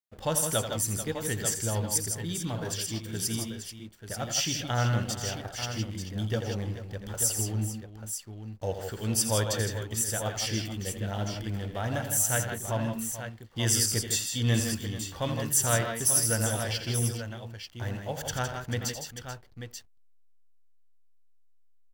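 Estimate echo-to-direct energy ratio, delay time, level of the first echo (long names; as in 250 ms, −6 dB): −3.0 dB, 84 ms, −9.5 dB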